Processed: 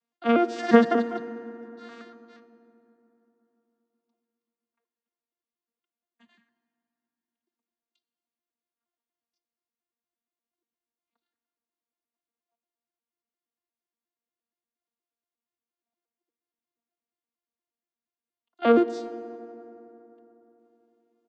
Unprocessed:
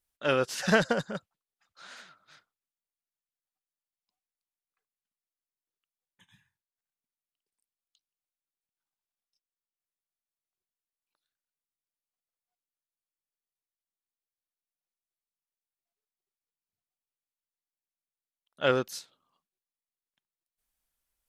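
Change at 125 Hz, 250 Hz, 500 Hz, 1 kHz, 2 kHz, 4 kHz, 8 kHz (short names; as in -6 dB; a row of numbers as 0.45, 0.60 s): n/a, +11.0 dB, +6.0 dB, +7.0 dB, -2.0 dB, -5.0 dB, under -10 dB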